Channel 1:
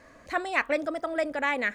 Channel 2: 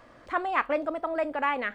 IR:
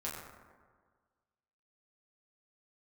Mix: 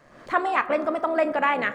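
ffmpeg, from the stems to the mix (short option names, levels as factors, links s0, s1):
-filter_complex "[0:a]equalizer=f=81:t=o:w=2:g=7,aeval=exprs='val(0)*sin(2*PI*72*n/s)':c=same,volume=0.841[s0];[1:a]highpass=130,dynaudnorm=f=100:g=3:m=5.31,volume=0.376,asplit=3[s1][s2][s3];[s2]volume=0.282[s4];[s3]apad=whole_len=76905[s5];[s0][s5]sidechaincompress=threshold=0.0447:ratio=8:attack=44:release=121[s6];[2:a]atrim=start_sample=2205[s7];[s4][s7]afir=irnorm=-1:irlink=0[s8];[s6][s1][s8]amix=inputs=3:normalize=0"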